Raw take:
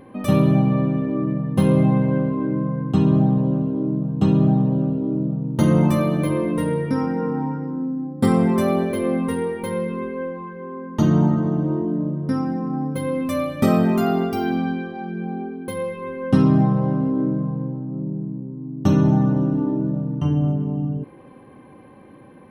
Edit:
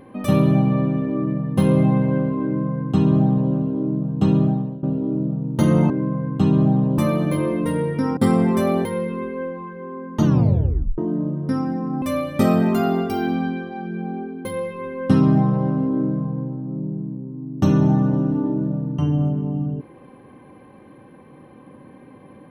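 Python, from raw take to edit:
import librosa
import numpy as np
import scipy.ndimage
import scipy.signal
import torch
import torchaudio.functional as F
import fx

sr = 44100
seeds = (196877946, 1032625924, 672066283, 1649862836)

y = fx.edit(x, sr, fx.duplicate(start_s=2.44, length_s=1.08, to_s=5.9),
    fx.fade_out_to(start_s=4.36, length_s=0.47, floor_db=-19.0),
    fx.cut(start_s=7.09, length_s=1.09),
    fx.cut(start_s=8.86, length_s=0.79),
    fx.tape_stop(start_s=11.04, length_s=0.74),
    fx.cut(start_s=12.82, length_s=0.43), tone=tone)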